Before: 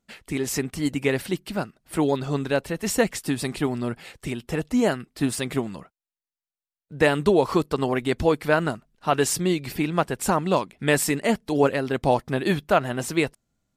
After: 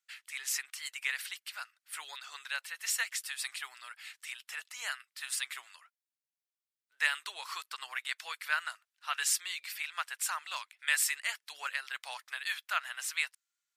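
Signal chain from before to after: HPF 1400 Hz 24 dB/oct; gain -3.5 dB

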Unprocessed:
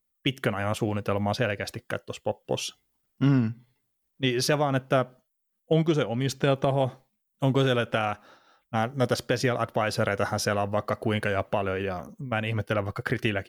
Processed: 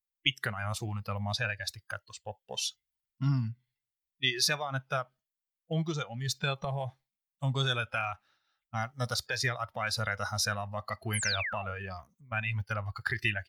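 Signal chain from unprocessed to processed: painted sound fall, 11.13–11.72, 460–12000 Hz -35 dBFS; graphic EQ 250/500/1000/2000/4000 Hz -10/-11/-5/+4/+4 dB; spectral noise reduction 15 dB; gain -1 dB

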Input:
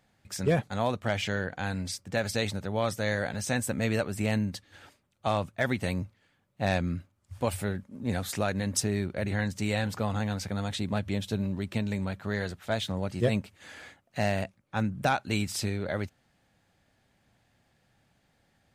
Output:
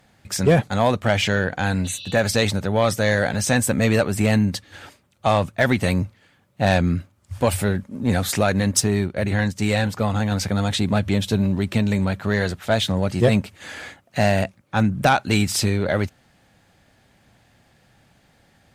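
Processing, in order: added harmonics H 5 -28 dB, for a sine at -12.5 dBFS; 1.88–2.17 spectral repair 2600–5900 Hz after; in parallel at -9 dB: soft clip -22.5 dBFS, distortion -13 dB; 8.71–10.32 on the sum: upward expander 1.5:1, over -40 dBFS; gain +7 dB

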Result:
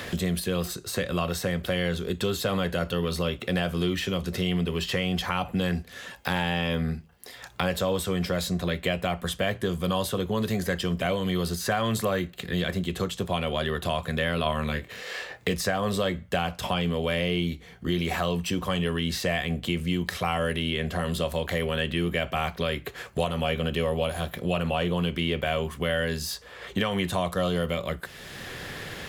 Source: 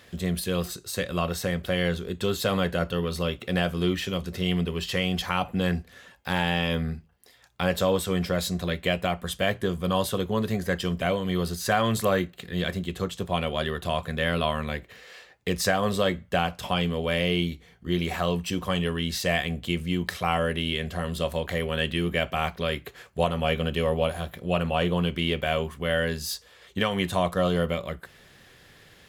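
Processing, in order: in parallel at -1.5 dB: limiter -20 dBFS, peak gain reduction 9.5 dB; 14.43–15.54 on the sum: doubler 26 ms -6 dB; three-band squash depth 70%; gain -4.5 dB

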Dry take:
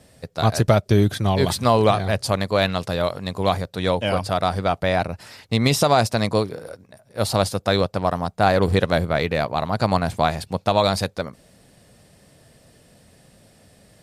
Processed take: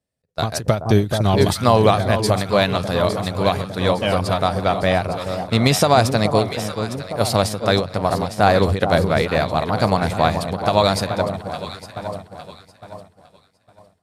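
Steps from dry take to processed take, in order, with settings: echo with dull and thin repeats by turns 0.429 s, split 1100 Hz, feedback 77%, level -8 dB; expander -28 dBFS; ending taper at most 160 dB/s; gain +2.5 dB

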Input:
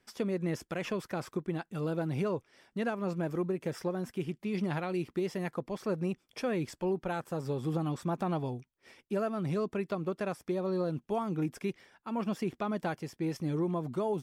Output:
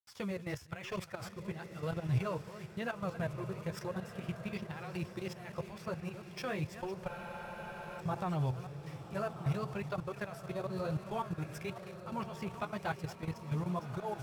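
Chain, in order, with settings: reverse delay 0.302 s, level -12 dB; bit-crush 10-bit; flange 1 Hz, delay 5.6 ms, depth 10 ms, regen -5%; level quantiser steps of 12 dB; bell 100 Hz +11 dB 1.2 oct; pump 90 bpm, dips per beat 1, -22 dB, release 0.102 s; bell 280 Hz -13.5 dB 1.7 oct; on a send: diffused feedback echo 1.275 s, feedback 41%, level -10 dB; on the sum: spectral freeze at 7.11, 0.88 s; decimation joined by straight lines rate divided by 2×; gain +6 dB

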